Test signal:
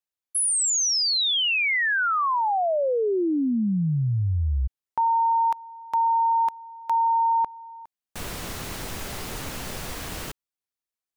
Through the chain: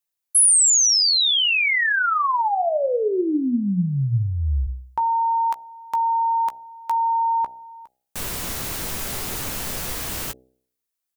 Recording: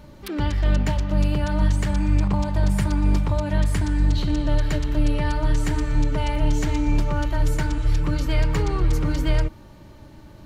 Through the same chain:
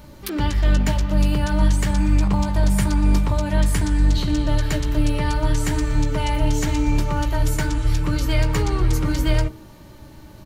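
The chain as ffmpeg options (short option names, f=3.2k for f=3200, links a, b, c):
-filter_complex "[0:a]asplit=2[a][b];[b]adelay=16,volume=-10dB[c];[a][c]amix=inputs=2:normalize=0,bandreject=f=63.53:t=h:w=4,bandreject=f=127.06:t=h:w=4,bandreject=f=190.59:t=h:w=4,bandreject=f=254.12:t=h:w=4,bandreject=f=317.65:t=h:w=4,bandreject=f=381.18:t=h:w=4,bandreject=f=444.71:t=h:w=4,bandreject=f=508.24:t=h:w=4,bandreject=f=571.77:t=h:w=4,bandreject=f=635.3:t=h:w=4,bandreject=f=698.83:t=h:w=4,bandreject=f=762.36:t=h:w=4,bandreject=f=825.89:t=h:w=4,crystalizer=i=1:c=0,volume=2dB"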